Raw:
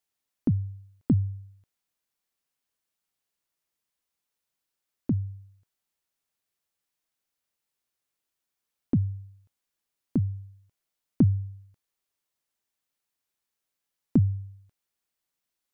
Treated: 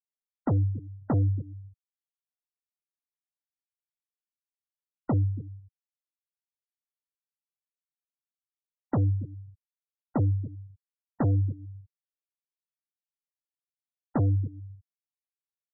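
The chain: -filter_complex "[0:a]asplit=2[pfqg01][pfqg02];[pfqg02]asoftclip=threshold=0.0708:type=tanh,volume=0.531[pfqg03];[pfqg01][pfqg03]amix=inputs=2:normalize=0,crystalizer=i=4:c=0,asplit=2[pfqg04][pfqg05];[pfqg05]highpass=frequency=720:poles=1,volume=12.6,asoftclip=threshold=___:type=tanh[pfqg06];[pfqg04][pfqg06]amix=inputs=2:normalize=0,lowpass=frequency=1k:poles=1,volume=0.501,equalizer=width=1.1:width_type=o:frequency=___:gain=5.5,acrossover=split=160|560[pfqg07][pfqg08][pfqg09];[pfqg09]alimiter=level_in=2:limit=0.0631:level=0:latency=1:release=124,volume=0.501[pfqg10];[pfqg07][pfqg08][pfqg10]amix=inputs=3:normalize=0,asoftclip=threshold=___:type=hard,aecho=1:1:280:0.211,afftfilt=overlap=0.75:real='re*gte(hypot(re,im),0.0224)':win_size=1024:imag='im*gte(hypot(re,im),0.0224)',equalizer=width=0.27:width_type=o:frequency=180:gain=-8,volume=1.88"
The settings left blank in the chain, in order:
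0.316, 1.1k, 0.0473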